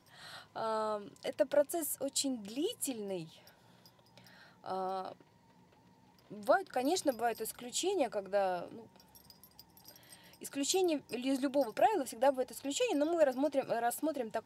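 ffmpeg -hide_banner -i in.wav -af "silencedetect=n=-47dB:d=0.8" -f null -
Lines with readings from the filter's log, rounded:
silence_start: 5.21
silence_end: 6.31 | silence_duration: 1.10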